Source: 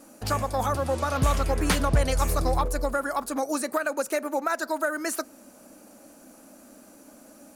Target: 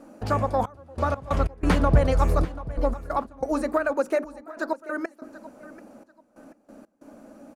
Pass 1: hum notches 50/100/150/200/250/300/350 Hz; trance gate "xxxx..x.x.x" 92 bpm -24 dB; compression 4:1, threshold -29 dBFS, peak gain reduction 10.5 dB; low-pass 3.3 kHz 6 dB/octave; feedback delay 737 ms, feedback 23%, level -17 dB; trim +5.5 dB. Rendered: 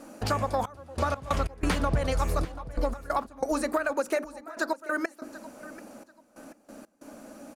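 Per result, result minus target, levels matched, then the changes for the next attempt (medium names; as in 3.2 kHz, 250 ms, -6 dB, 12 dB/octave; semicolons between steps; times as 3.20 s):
compression: peak gain reduction +10.5 dB; 4 kHz band +7.0 dB
remove: compression 4:1, threshold -29 dBFS, peak gain reduction 10.5 dB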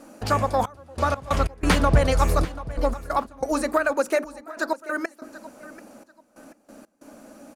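4 kHz band +7.0 dB
change: low-pass 940 Hz 6 dB/octave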